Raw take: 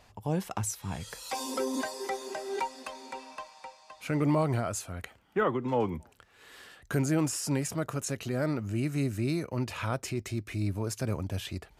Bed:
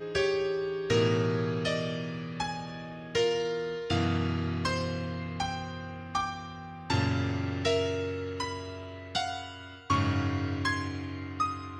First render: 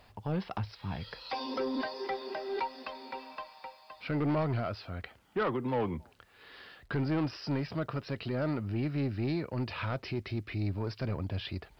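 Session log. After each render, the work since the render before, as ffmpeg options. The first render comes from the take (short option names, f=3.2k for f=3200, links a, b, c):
-af "aresample=11025,asoftclip=type=tanh:threshold=-24.5dB,aresample=44100,acrusher=bits=11:mix=0:aa=0.000001"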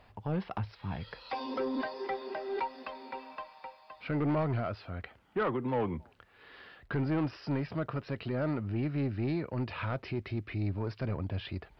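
-af "bass=f=250:g=0,treble=f=4k:g=-11"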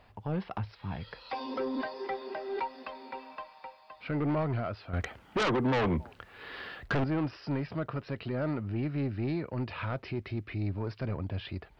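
-filter_complex "[0:a]asettb=1/sr,asplit=3[a][b][c];[a]atrim=end=4.934[d];[b]atrim=start=4.93:end=7.04,asetpts=PTS-STARTPTS,afade=t=in:d=0.004:c=qsin,afade=t=out:st=2.106:d=0.004:c=qsin,aeval=exprs='0.0631*sin(PI/2*2*val(0)/0.0631)':c=same[e];[c]atrim=start=7.036[f];[d][e]acrossfade=d=0.004:c1=hsin:c2=qsin[g];[g][f]acrossfade=d=0.004:c1=qsin:c2=hsin"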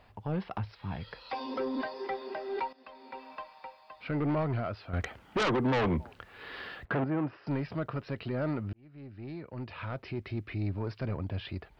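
-filter_complex "[0:a]asettb=1/sr,asplit=3[a][b][c];[a]atrim=end=6.854[d];[b]atrim=start=6.85:end=7.47,asetpts=PTS-STARTPTS,afade=t=in:d=0.004:c=qsin,afade=t=out:st=0.616:d=0.004:c=qsin,highpass=130,lowpass=2k[e];[c]atrim=start=7.466[f];[d][e]acrossfade=d=0.004:c1=hsin:c2=qsin[g];[g][f]acrossfade=d=0.004:c1=qsin:c2=hsin,asplit=3[h][i][j];[h]atrim=end=2.73,asetpts=PTS-STARTPTS,afade=t=out:st=2.726:d=0.004:c=hsin:silence=0.16788[k];[i]atrim=start=2.73:end=8.73,asetpts=PTS-STARTPTS,afade=t=in:d=0.61:silence=0.16788,afade=t=out:st=5.996:d=0.004:c=hsin[l];[j]atrim=start=8.73,asetpts=PTS-STARTPTS,afade=t=in:d=1.69[m];[k][l][m]concat=n=3:v=0:a=1"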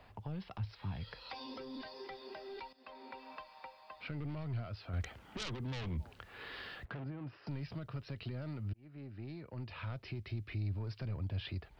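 -filter_complex "[0:a]alimiter=level_in=3.5dB:limit=-24dB:level=0:latency=1:release=26,volume=-3.5dB,acrossover=split=140|3000[a][b][c];[b]acompressor=threshold=-47dB:ratio=6[d];[a][d][c]amix=inputs=3:normalize=0"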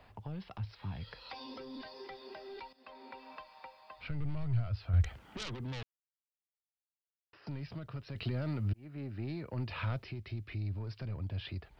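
-filter_complex "[0:a]asplit=3[a][b][c];[a]afade=t=out:st=3.97:d=0.02[d];[b]asubboost=boost=7:cutoff=100,afade=t=in:st=3.97:d=0.02,afade=t=out:st=5.15:d=0.02[e];[c]afade=t=in:st=5.15:d=0.02[f];[d][e][f]amix=inputs=3:normalize=0,asettb=1/sr,asplit=3[g][h][i];[g]atrim=end=8.154[j];[h]atrim=start=8.15:end=10.04,asetpts=PTS-STARTPTS,afade=t=in:d=0.004:c=qsin,afade=t=out:st=1.886:d=0.004:c=qsin,acontrast=71[k];[i]atrim=start=10.036[l];[j][k]acrossfade=d=0.004:c1=hsin:c2=qsin[m];[m][l]acrossfade=d=0.004:c1=qsin:c2=hsin,asplit=3[n][o][p];[n]atrim=end=5.83,asetpts=PTS-STARTPTS,afade=t=out:st=5.826:d=0.004:c=hsin[q];[o]atrim=start=5.83:end=7.33,asetpts=PTS-STARTPTS,volume=0[r];[p]atrim=start=7.33,asetpts=PTS-STARTPTS,afade=t=in:d=0.004:c=hsin[s];[q][r][s]concat=n=3:v=0:a=1"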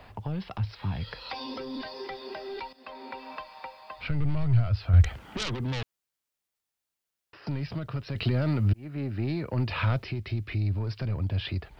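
-af "volume=9.5dB"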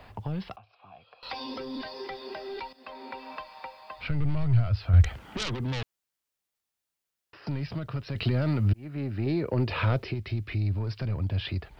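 -filter_complex "[0:a]asettb=1/sr,asplit=3[a][b][c];[a]atrim=end=0.564[d];[b]atrim=start=0.56:end=1.23,asetpts=PTS-STARTPTS,afade=t=in:d=0.004:c=qsin,afade=t=out:st=0.666:d=0.004:c=qsin,asplit=3[e][f][g];[e]bandpass=f=730:t=q:w=8,volume=0dB[h];[f]bandpass=f=1.09k:t=q:w=8,volume=-6dB[i];[g]bandpass=f=2.44k:t=q:w=8,volume=-9dB[j];[h][i][j]amix=inputs=3:normalize=0[k];[c]atrim=start=1.226[l];[d][k]acrossfade=d=0.004:c1=hsin:c2=qsin[m];[m][l]acrossfade=d=0.004:c1=qsin:c2=hsin,asettb=1/sr,asplit=3[n][o][p];[n]atrim=end=9.264[q];[o]atrim=start=9.26:end=10.14,asetpts=PTS-STARTPTS,afade=t=in:d=0.004:c=qsin,afade=t=out:st=0.876:d=0.004:c=qsin,equalizer=f=420:w=1.5:g=8[r];[p]atrim=start=10.136[s];[q][r]acrossfade=d=0.004:c1=hsin:c2=qsin[t];[t][s]acrossfade=d=0.004:c1=qsin:c2=hsin"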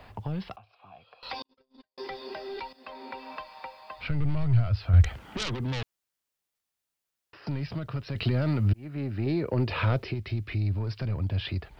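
-filter_complex "[0:a]asettb=1/sr,asplit=3[a][b][c];[a]atrim=end=1.424[d];[b]atrim=start=1.42:end=1.98,asetpts=PTS-STARTPTS,afade=t=in:d=0.004:c=qsin,afade=t=out:st=0.556:d=0.004:c=qsin,agate=range=-55dB:threshold=-33dB:ratio=16:release=100:detection=peak[e];[c]atrim=start=1.976[f];[d][e]acrossfade=d=0.004:c1=hsin:c2=qsin[g];[g][f]acrossfade=d=0.004:c1=qsin:c2=hsin"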